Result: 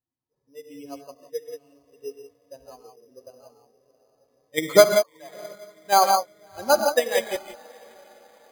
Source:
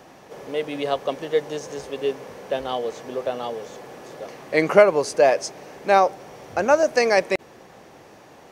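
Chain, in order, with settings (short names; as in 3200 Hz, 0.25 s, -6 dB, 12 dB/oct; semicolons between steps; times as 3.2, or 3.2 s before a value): per-bin expansion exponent 2; 1.17–1.93 tilt +2 dB/oct; in parallel at 0 dB: level quantiser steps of 19 dB; 4.84–5.35 on the sum: ladder band-pass 1200 Hz, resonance 55%; on a send: diffused feedback echo 0.684 s, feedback 53%, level -16 dB; on the sum: non-linear reverb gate 0.2 s rising, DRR 2 dB; careless resampling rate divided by 8×, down filtered, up hold; upward expander 1.5:1, over -34 dBFS; gain -1 dB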